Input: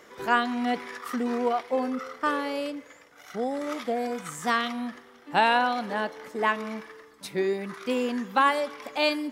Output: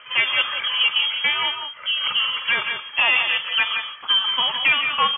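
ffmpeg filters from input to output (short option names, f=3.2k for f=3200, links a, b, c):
-af "equalizer=f=2.4k:t=o:w=0.26:g=12.5,bandreject=f=60:t=h:w=6,bandreject=f=120:t=h:w=6,bandreject=f=180:t=h:w=6,bandreject=f=240:t=h:w=6,aecho=1:1:2.7:0.31,aresample=11025,volume=19.5dB,asoftclip=hard,volume=-19.5dB,aresample=44100,atempo=1.8,aecho=1:1:48|149|173:0.119|0.224|0.422,lowpass=f=3k:t=q:w=0.5098,lowpass=f=3k:t=q:w=0.6013,lowpass=f=3k:t=q:w=0.9,lowpass=f=3k:t=q:w=2.563,afreqshift=-3500,volume=6.5dB"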